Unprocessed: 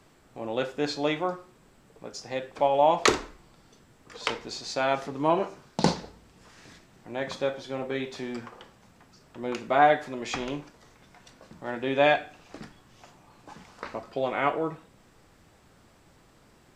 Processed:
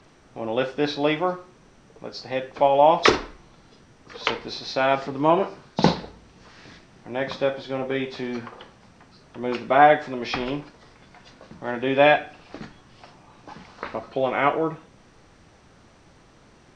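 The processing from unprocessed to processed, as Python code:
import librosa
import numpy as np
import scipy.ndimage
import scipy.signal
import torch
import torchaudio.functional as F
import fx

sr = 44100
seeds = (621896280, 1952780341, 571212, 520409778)

y = fx.freq_compress(x, sr, knee_hz=3300.0, ratio=1.5)
y = y * librosa.db_to_amplitude(5.0)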